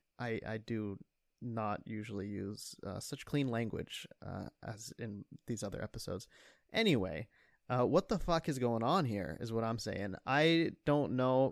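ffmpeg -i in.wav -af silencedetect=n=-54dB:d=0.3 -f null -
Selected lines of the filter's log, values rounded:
silence_start: 1.02
silence_end: 1.42 | silence_duration: 0.40
silence_start: 7.25
silence_end: 7.69 | silence_duration: 0.44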